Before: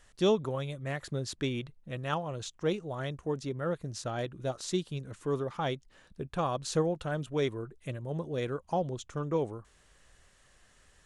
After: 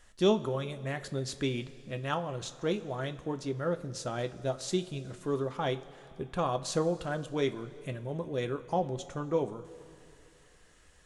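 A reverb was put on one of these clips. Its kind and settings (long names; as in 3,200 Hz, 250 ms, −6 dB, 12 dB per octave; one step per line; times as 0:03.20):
coupled-rooms reverb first 0.2 s, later 2.9 s, from −18 dB, DRR 7.5 dB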